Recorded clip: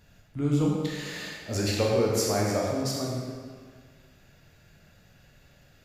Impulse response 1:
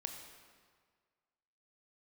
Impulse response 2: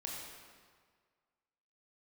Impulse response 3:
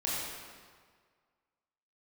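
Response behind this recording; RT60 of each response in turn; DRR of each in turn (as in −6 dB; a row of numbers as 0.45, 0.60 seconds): 2; 1.7, 1.7, 1.7 seconds; 4.0, −3.0, −7.0 decibels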